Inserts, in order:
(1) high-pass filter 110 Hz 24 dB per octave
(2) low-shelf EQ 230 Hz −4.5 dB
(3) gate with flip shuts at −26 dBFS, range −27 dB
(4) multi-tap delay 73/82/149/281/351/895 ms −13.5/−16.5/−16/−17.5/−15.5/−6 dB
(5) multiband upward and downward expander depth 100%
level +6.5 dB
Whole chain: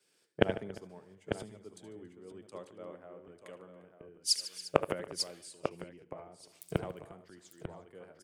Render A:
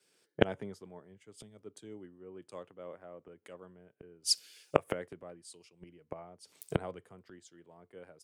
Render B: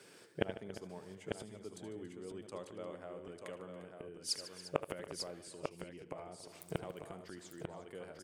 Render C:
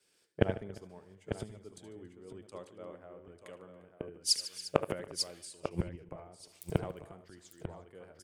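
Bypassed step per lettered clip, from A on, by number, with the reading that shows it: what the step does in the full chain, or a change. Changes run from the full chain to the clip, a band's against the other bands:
4, change in momentary loudness spread +1 LU
5, 4 kHz band −2.5 dB
1, 125 Hz band +4.5 dB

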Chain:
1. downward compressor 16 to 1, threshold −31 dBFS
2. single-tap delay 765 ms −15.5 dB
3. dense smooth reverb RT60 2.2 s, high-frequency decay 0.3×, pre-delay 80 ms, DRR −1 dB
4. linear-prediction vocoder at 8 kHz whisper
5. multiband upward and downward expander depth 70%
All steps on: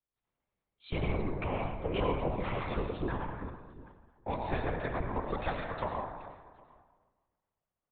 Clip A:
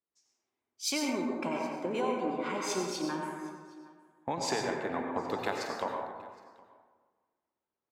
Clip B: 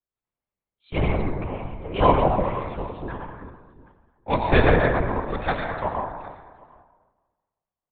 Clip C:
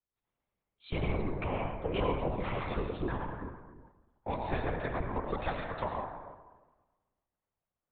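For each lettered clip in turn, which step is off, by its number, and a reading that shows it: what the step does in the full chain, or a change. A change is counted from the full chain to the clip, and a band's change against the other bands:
4, 125 Hz band −13.0 dB
1, average gain reduction 6.0 dB
2, change in momentary loudness spread −1 LU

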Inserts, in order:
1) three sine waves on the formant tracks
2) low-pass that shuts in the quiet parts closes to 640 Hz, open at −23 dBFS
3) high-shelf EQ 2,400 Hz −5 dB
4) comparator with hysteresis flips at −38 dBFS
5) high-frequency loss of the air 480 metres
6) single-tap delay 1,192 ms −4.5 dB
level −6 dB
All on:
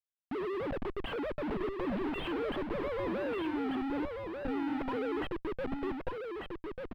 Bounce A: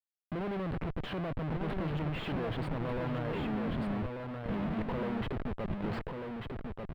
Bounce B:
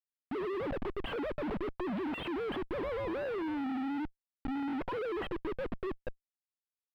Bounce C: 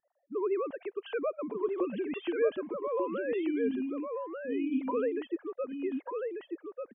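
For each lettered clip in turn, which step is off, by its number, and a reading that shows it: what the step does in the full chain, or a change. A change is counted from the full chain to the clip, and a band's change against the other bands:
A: 1, 125 Hz band +12.5 dB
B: 6, change in crest factor −2.5 dB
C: 4, distortion level −1 dB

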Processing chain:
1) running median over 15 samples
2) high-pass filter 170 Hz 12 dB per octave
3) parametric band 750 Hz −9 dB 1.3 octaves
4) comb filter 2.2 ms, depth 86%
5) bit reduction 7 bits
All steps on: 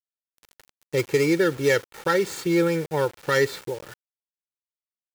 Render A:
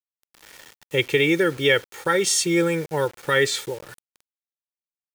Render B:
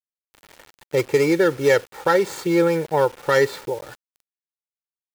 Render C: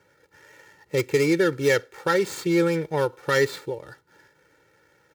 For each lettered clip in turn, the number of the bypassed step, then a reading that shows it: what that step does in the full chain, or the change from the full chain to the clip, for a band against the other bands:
1, 8 kHz band +10.0 dB
3, 1 kHz band +4.5 dB
5, distortion level −24 dB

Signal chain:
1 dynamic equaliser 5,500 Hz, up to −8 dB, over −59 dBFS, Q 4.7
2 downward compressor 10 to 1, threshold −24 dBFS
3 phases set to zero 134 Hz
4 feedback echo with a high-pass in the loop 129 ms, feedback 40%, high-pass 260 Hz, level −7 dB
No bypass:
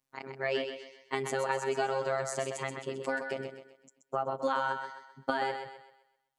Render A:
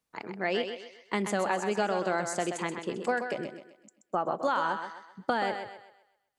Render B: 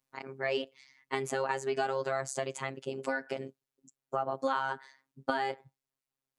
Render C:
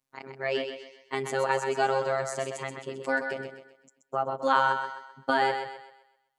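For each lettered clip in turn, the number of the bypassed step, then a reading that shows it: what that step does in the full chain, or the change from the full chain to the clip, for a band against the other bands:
3, 250 Hz band +5.0 dB
4, change in momentary loudness spread −4 LU
2, average gain reduction 2.5 dB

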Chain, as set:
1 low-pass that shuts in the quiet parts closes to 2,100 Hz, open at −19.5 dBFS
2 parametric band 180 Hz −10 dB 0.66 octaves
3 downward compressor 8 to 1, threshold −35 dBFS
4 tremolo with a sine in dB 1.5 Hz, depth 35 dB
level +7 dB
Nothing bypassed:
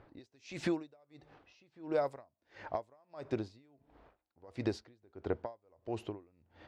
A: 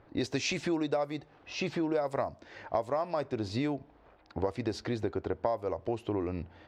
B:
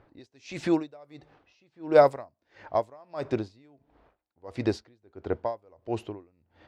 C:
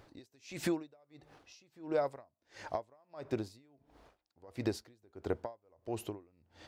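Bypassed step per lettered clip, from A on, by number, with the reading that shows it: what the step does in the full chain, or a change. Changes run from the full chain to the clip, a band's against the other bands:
4, change in momentary loudness spread −12 LU
3, change in crest factor +4.5 dB
1, 4 kHz band +2.0 dB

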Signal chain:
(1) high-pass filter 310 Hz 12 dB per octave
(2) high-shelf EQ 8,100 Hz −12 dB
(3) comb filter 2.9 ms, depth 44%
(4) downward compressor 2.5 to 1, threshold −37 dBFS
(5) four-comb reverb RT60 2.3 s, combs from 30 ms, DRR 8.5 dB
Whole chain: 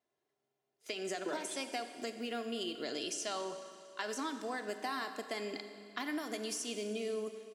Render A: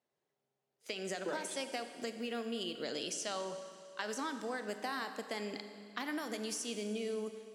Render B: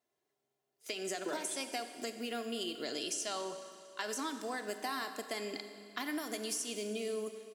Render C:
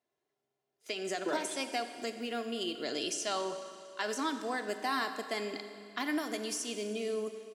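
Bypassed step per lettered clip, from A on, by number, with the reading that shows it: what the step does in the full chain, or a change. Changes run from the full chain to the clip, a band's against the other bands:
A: 3, 125 Hz band +4.0 dB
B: 2, 8 kHz band +3.5 dB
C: 4, change in integrated loudness +3.5 LU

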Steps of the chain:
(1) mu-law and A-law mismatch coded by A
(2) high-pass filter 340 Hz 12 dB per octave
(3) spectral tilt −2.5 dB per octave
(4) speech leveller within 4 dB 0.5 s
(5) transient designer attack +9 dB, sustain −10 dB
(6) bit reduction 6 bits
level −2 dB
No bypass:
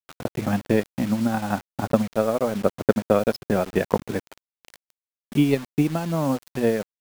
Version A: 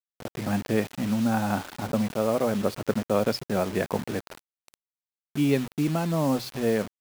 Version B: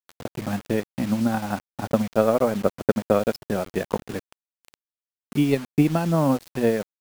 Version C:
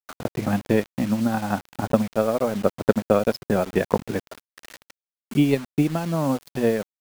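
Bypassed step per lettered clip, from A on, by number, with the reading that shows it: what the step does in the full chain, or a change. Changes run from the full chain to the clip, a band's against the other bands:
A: 5, change in crest factor −5.5 dB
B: 4, change in momentary loudness spread +3 LU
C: 1, distortion level −29 dB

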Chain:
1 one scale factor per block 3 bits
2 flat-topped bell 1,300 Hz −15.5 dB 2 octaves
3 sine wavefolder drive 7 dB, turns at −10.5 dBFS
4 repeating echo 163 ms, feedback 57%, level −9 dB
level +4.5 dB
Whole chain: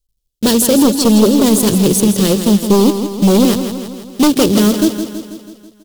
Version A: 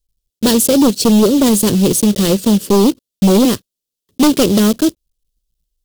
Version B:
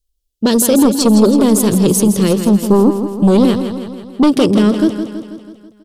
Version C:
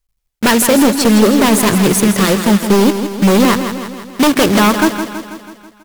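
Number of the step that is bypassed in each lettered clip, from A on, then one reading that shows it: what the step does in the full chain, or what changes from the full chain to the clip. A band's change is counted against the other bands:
4, echo-to-direct ratio −7.5 dB to none audible
1, distortion level −12 dB
2, 2 kHz band +11.0 dB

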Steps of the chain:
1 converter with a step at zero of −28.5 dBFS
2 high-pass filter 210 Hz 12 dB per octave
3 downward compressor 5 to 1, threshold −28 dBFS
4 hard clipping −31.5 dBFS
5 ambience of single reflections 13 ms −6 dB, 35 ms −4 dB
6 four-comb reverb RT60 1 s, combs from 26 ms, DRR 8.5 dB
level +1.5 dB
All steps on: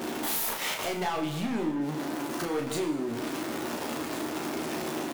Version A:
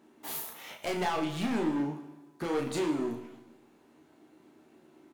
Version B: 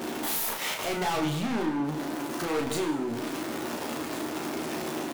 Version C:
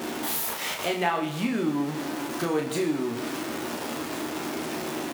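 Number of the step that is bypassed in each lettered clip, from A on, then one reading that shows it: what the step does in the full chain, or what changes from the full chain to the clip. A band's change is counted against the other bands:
1, distortion level −10 dB
3, average gain reduction 2.5 dB
4, distortion level −10 dB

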